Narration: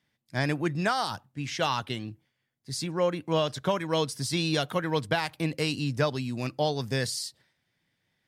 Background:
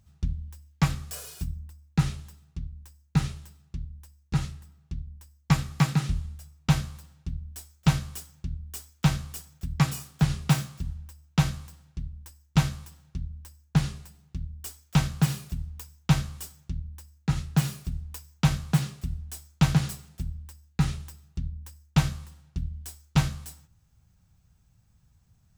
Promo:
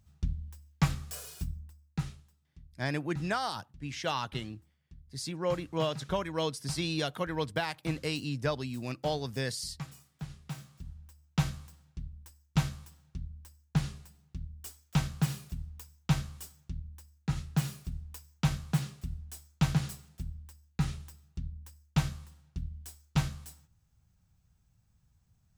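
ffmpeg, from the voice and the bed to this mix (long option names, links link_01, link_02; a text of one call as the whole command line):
ffmpeg -i stem1.wav -i stem2.wav -filter_complex "[0:a]adelay=2450,volume=-5dB[link_01];[1:a]volume=9dB,afade=type=out:start_time=1.42:duration=0.86:silence=0.177828,afade=type=in:start_time=10.52:duration=0.88:silence=0.237137[link_02];[link_01][link_02]amix=inputs=2:normalize=0" out.wav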